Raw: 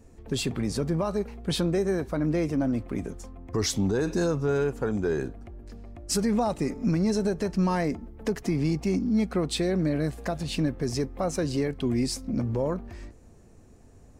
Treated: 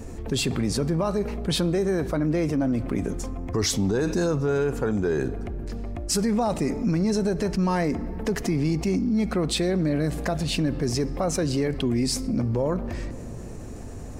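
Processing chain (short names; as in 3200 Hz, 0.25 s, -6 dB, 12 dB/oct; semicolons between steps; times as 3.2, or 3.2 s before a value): on a send at -21 dB: reverb RT60 2.0 s, pre-delay 3 ms; on the sum: fast leveller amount 50%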